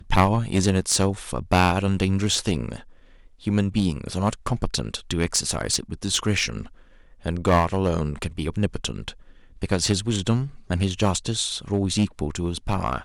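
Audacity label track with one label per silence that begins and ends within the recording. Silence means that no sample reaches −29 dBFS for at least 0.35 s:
2.760000	3.470000	silence
6.630000	7.260000	silence
9.100000	9.620000	silence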